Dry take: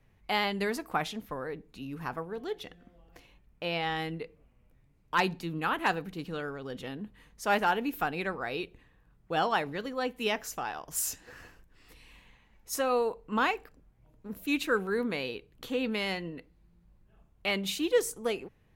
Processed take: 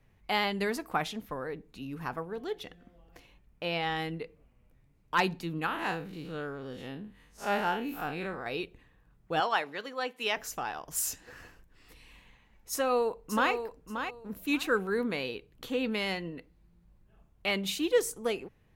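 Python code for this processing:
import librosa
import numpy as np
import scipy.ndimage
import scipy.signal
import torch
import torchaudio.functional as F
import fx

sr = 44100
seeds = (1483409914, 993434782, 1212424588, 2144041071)

y = fx.spec_blur(x, sr, span_ms=92.0, at=(5.66, 8.46))
y = fx.weighting(y, sr, curve='A', at=(9.4, 10.37))
y = fx.echo_throw(y, sr, start_s=12.71, length_s=0.81, ms=580, feedback_pct=20, wet_db=-8.0)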